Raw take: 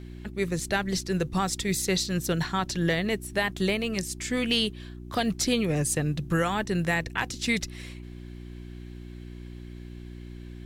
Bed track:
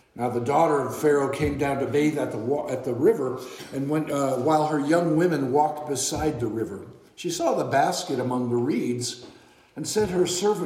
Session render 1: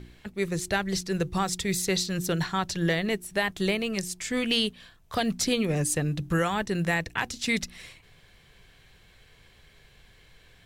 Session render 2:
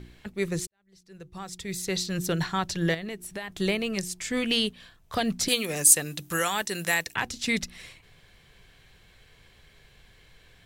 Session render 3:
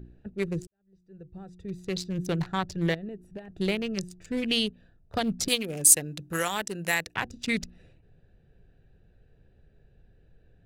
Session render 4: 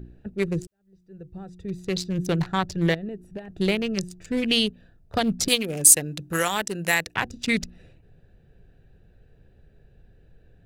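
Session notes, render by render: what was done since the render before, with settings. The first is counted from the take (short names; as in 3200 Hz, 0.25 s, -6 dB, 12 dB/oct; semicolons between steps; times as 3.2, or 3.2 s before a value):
de-hum 60 Hz, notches 6
0.67–2.16 fade in quadratic; 2.94–3.52 compressor 5:1, threshold -32 dBFS; 5.48–7.16 RIAA curve recording
Wiener smoothing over 41 samples
gain +4.5 dB; limiter -1 dBFS, peak gain reduction 2 dB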